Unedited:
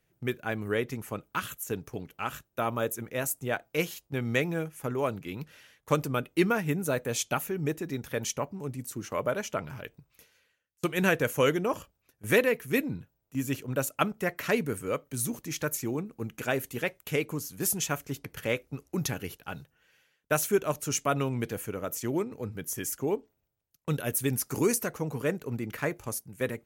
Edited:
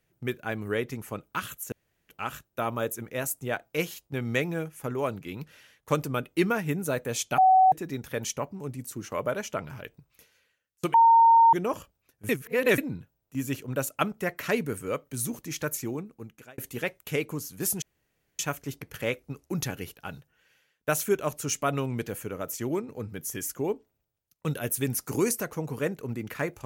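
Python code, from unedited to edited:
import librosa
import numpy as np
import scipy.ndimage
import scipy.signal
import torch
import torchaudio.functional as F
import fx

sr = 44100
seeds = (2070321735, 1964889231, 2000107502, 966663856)

y = fx.edit(x, sr, fx.room_tone_fill(start_s=1.72, length_s=0.37),
    fx.bleep(start_s=7.38, length_s=0.34, hz=754.0, db=-14.5),
    fx.bleep(start_s=10.94, length_s=0.59, hz=917.0, db=-13.5),
    fx.reverse_span(start_s=12.29, length_s=0.49),
    fx.fade_out_span(start_s=15.81, length_s=0.77),
    fx.insert_room_tone(at_s=17.82, length_s=0.57), tone=tone)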